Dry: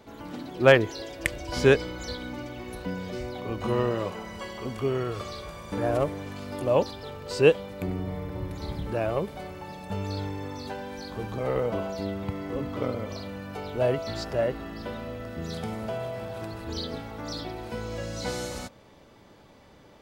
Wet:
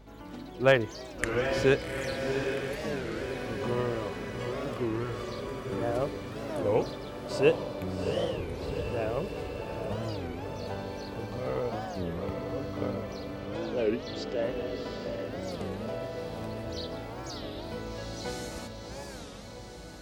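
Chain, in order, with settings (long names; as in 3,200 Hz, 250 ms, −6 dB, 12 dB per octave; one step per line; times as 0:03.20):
0:13.39–0:14.44: loudspeaker in its box 250–7,300 Hz, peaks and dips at 280 Hz +9 dB, 460 Hz +8 dB, 650 Hz −5 dB, 1,100 Hz −10 dB, 3,200 Hz +8 dB
feedback delay with all-pass diffusion 756 ms, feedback 64%, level −5 dB
mains hum 50 Hz, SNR 21 dB
wow of a warped record 33 1/3 rpm, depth 250 cents
level −5 dB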